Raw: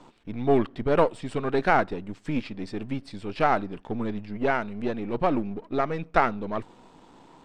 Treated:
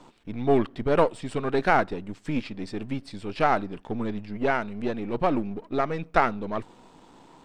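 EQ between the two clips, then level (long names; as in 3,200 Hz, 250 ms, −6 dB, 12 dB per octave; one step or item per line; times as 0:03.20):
high-shelf EQ 5,800 Hz +4.5 dB
0.0 dB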